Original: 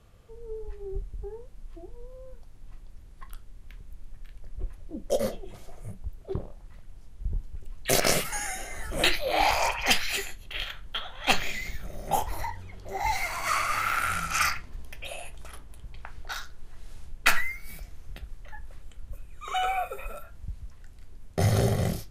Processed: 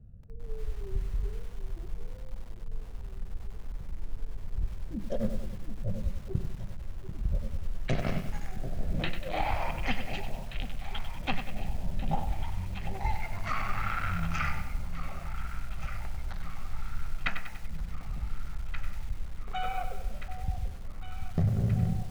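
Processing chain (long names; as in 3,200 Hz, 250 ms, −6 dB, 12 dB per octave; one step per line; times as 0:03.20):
adaptive Wiener filter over 41 samples
treble cut that deepens with the level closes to 2,800 Hz, closed at −21 dBFS
low shelf with overshoot 260 Hz +9.5 dB, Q 1.5
downward compressor 5 to 1, threshold −21 dBFS, peak gain reduction 12 dB
high-frequency loss of the air 130 metres
delay that swaps between a low-pass and a high-pass 739 ms, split 820 Hz, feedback 78%, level −10 dB
feedback echo at a low word length 96 ms, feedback 55%, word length 7 bits, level −8.5 dB
level −3.5 dB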